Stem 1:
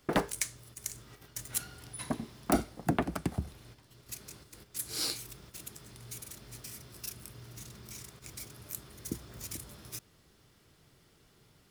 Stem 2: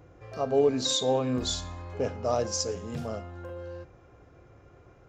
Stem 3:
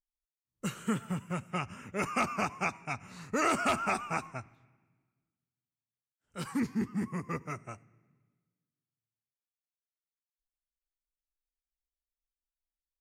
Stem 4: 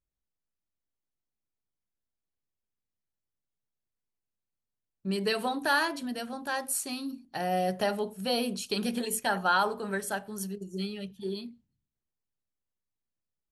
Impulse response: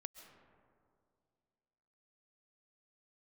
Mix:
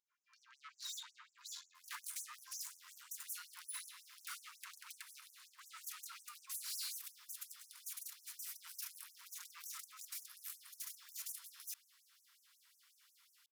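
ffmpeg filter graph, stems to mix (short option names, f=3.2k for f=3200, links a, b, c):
-filter_complex "[0:a]highpass=840,equalizer=f=13k:w=2.2:g=4.5,adelay=1750,volume=-2.5dB[a];[1:a]volume=-15dB[b];[2:a]highpass=f=150:w=0.5412,highpass=f=150:w=1.3066,alimiter=level_in=3.5dB:limit=-24dB:level=0:latency=1:release=12,volume=-3.5dB,aeval=exprs='0.0188*(abs(mod(val(0)/0.0188+3,4)-2)-1)':c=same,adelay=2250,volume=-13.5dB[c];[a][b][c]amix=inputs=3:normalize=0,dynaudnorm=f=220:g=3:m=5dB,aeval=exprs='(tanh(112*val(0)+0.65)-tanh(0.65))/112':c=same,afftfilt=real='re*gte(b*sr/1024,870*pow(5800/870,0.5+0.5*sin(2*PI*5.5*pts/sr)))':imag='im*gte(b*sr/1024,870*pow(5800/870,0.5+0.5*sin(2*PI*5.5*pts/sr)))':win_size=1024:overlap=0.75"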